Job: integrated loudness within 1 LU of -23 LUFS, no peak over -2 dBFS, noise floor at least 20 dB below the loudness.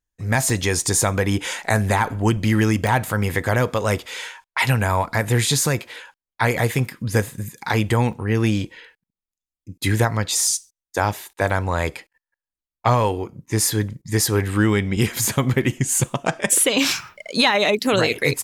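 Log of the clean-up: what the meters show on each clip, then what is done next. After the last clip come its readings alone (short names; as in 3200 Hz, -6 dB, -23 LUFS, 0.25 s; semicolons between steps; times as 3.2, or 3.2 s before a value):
dropouts 5; longest dropout 2.1 ms; loudness -20.5 LUFS; peak -4.5 dBFS; loudness target -23.0 LUFS
-> interpolate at 0.5/2.87/8.13/10.47/15.25, 2.1 ms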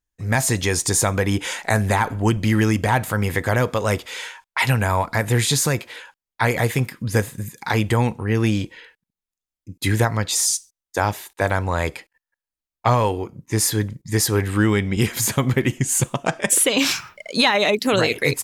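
dropouts 0; loudness -20.5 LUFS; peak -4.5 dBFS; loudness target -23.0 LUFS
-> gain -2.5 dB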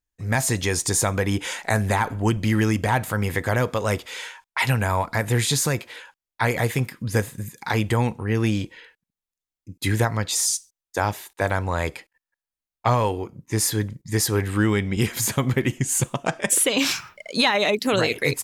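loudness -23.0 LUFS; peak -7.0 dBFS; noise floor -91 dBFS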